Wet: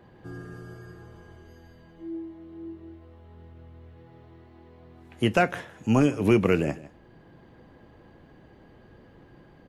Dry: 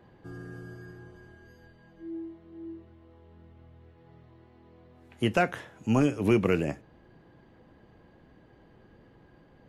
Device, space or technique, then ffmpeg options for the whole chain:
ducked delay: -filter_complex "[0:a]asplit=3[a][b][c];[b]adelay=156,volume=-4.5dB[d];[c]apad=whole_len=434019[e];[d][e]sidechaincompress=threshold=-44dB:ratio=4:attack=45:release=511[f];[a][f]amix=inputs=2:normalize=0,volume=3dB"

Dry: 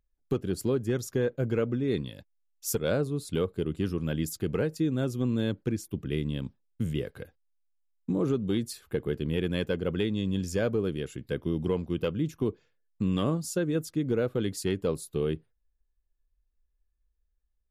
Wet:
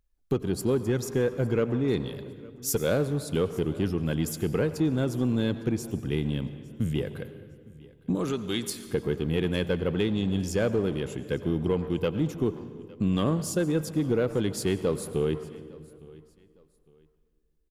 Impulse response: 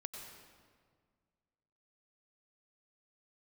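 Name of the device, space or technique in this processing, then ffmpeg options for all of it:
saturated reverb return: -filter_complex "[0:a]asettb=1/sr,asplit=3[a][b][c];[a]atrim=end=8.154[d];[b]atrim=start=8.15:end=8.7,asetpts=PTS-STARTPTS,afade=t=in:d=0.004:c=qsin,afade=t=out:st=0.546:d=0.004:c=qsin,tiltshelf=f=870:g=-7.5[e];[c]atrim=start=8.696[f];[d][e]acrossfade=d=0.004:c1=hsin:c2=qsin[g];[g][f]acrossfade=d=0.004:c1=qsin:c2=hsin,asplit=2[h][i];[1:a]atrim=start_sample=2205[j];[i][j]afir=irnorm=-1:irlink=0,asoftclip=type=tanh:threshold=-31.5dB,volume=-1.5dB[k];[h][k]amix=inputs=2:normalize=0,aecho=1:1:858|1716:0.0708|0.0205"

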